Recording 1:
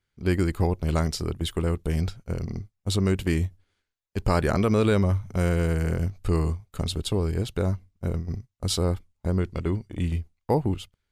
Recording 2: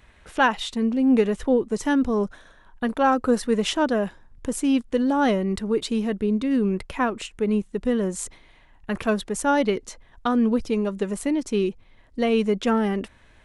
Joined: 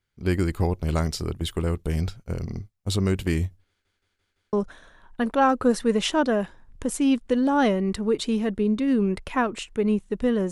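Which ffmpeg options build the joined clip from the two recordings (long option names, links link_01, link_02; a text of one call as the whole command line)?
ffmpeg -i cue0.wav -i cue1.wav -filter_complex "[0:a]apad=whole_dur=10.51,atrim=end=10.51,asplit=5[link_01][link_02][link_03][link_04][link_05];[link_01]atrim=end=3.852[link_06];[link_02]atrim=start=3.678:end=3.852[link_07];[link_03]atrim=start=3.678:end=3.852[link_08];[link_04]atrim=start=3.678:end=3.852[link_09];[link_05]atrim=start=3.678:end=3.852[link_10];[1:a]atrim=start=2.158:end=8.14[link_11];[link_06][link_07]acrossfade=duration=0.004:curve1=hsin:curve2=hsin[link_12];[link_12][link_08]acrossfade=duration=0.004:curve1=hsin:curve2=hsin[link_13];[link_13][link_09]acrossfade=duration=0.004:curve1=hsin:curve2=hsin[link_14];[link_14][link_10]acrossfade=duration=0.004:curve1=hsin:curve2=hsin[link_15];[link_15][link_11]acrossfade=duration=0.004:curve1=hsin:curve2=hsin" out.wav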